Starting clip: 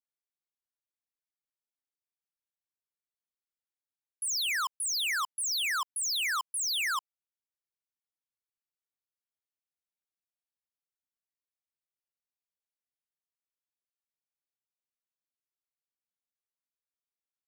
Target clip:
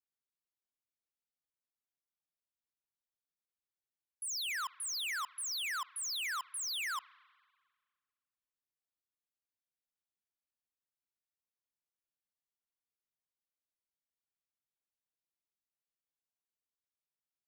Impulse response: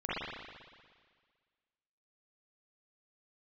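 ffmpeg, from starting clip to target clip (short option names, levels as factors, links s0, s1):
-filter_complex "[0:a]lowshelf=f=340:g=5.5,asplit=2[s0][s1];[1:a]atrim=start_sample=2205[s2];[s1][s2]afir=irnorm=-1:irlink=0,volume=0.0398[s3];[s0][s3]amix=inputs=2:normalize=0,volume=0.422"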